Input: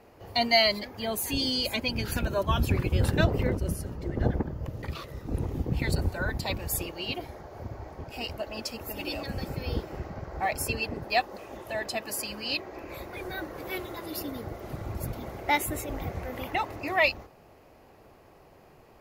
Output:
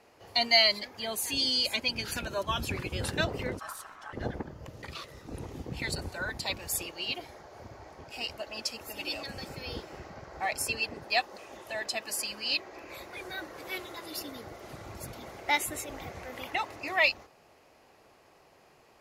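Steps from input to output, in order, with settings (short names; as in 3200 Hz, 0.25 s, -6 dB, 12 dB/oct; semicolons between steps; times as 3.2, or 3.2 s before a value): LPF 8600 Hz 12 dB/oct; tilt +2.5 dB/oct; 3.59–4.13 ring modulator 1200 Hz; gain -3 dB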